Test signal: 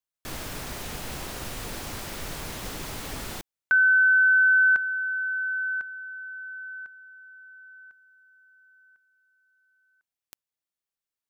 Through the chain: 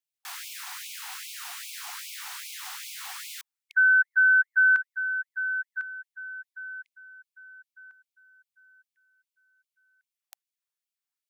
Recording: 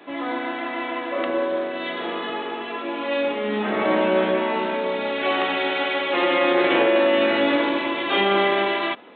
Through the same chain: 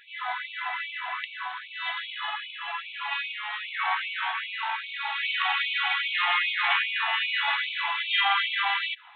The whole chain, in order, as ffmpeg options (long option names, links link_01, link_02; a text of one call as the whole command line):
ffmpeg -i in.wav -af "afftfilt=real='re*gte(b*sr/1024,680*pow(2200/680,0.5+0.5*sin(2*PI*2.5*pts/sr)))':imag='im*gte(b*sr/1024,680*pow(2200/680,0.5+0.5*sin(2*PI*2.5*pts/sr)))':win_size=1024:overlap=0.75" out.wav